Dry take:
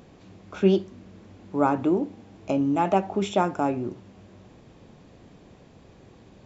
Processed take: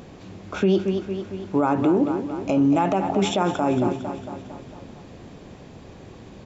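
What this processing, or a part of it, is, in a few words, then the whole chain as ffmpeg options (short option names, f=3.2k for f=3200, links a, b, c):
stacked limiters: -af "aecho=1:1:227|454|681|908|1135|1362:0.224|0.13|0.0753|0.0437|0.0253|0.0147,alimiter=limit=-14.5dB:level=0:latency=1:release=116,alimiter=limit=-19.5dB:level=0:latency=1:release=40,volume=8dB"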